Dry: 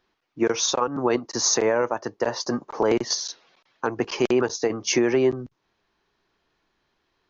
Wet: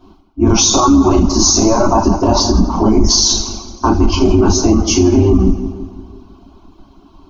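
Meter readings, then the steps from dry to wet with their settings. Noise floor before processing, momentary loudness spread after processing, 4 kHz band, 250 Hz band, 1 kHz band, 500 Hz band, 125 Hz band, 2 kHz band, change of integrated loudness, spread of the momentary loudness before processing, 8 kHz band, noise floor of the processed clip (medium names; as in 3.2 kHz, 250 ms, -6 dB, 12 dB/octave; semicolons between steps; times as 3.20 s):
-74 dBFS, 8 LU, +13.0 dB, +15.5 dB, +13.0 dB, +7.0 dB, +22.0 dB, +0.5 dB, +12.0 dB, 10 LU, no reading, -47 dBFS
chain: octave divider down 2 oct, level +1 dB; spectral selection erased 2.88–3.08 s, 2.5–5 kHz; bass shelf 470 Hz +11 dB; reverse; compression 16:1, threshold -24 dBFS, peak gain reduction 19 dB; reverse; static phaser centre 490 Hz, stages 6; two-slope reverb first 0.49 s, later 2.1 s, DRR -7 dB; reverb removal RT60 0.71 s; on a send: two-band feedback delay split 2.6 kHz, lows 166 ms, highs 82 ms, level -12.5 dB; on the sum: loudness maximiser +19.5 dB; tape noise reduction on one side only decoder only; trim -1 dB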